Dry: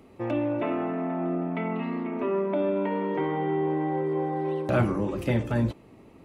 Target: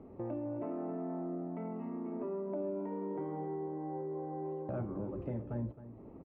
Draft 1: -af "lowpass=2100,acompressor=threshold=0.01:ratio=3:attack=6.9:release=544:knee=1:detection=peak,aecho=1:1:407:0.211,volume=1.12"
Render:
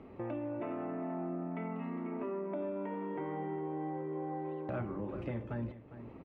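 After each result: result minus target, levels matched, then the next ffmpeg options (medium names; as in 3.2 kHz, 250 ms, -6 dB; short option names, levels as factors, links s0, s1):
2 kHz band +10.5 dB; echo 140 ms late
-af "lowpass=830,acompressor=threshold=0.01:ratio=3:attack=6.9:release=544:knee=1:detection=peak,aecho=1:1:407:0.211,volume=1.12"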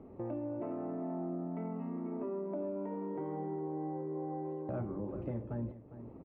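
echo 140 ms late
-af "lowpass=830,acompressor=threshold=0.01:ratio=3:attack=6.9:release=544:knee=1:detection=peak,aecho=1:1:267:0.211,volume=1.12"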